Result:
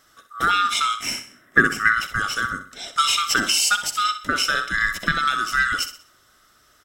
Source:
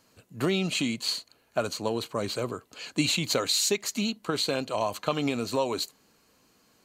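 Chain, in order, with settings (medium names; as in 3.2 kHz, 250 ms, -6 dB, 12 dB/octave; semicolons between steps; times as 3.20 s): split-band scrambler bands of 1 kHz; 0.97–1.92 s: ten-band graphic EQ 125 Hz +9 dB, 250 Hz +12 dB, 2 kHz +10 dB, 4 kHz -11 dB; on a send: feedback delay 63 ms, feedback 38%, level -11 dB; on the sum: trim +6 dB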